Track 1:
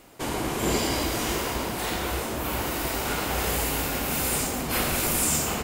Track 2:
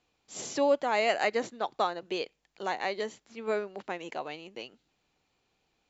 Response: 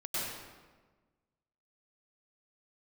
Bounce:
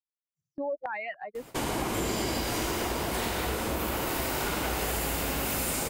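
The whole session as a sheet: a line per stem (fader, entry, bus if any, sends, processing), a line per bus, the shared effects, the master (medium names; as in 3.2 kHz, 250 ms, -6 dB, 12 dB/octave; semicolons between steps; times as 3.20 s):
-0.5 dB, 1.35 s, send -5.5 dB, none
-2.5 dB, 0.00 s, no send, expander on every frequency bin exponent 3; peak limiter -27.5 dBFS, peak gain reduction 10.5 dB; step-sequenced low-pass 3.5 Hz 620–2200 Hz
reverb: on, RT60 1.4 s, pre-delay 92 ms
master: gate with hold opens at -33 dBFS; compression, threshold -27 dBFS, peak gain reduction 9 dB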